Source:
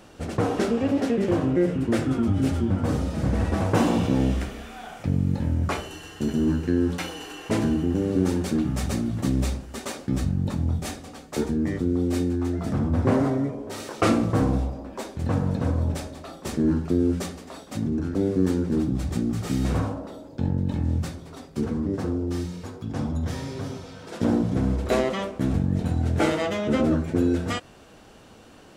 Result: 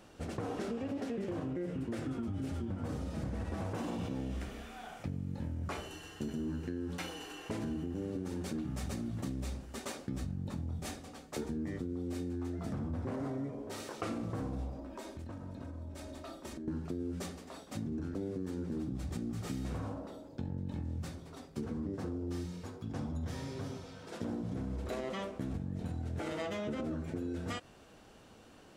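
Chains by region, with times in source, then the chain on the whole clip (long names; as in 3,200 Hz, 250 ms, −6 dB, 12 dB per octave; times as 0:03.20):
0:14.79–0:16.68: comb filter 3.2 ms, depth 52% + downward compressor 12 to 1, threshold −32 dBFS
whole clip: brickwall limiter −16.5 dBFS; downward compressor, threshold −26 dBFS; level −8 dB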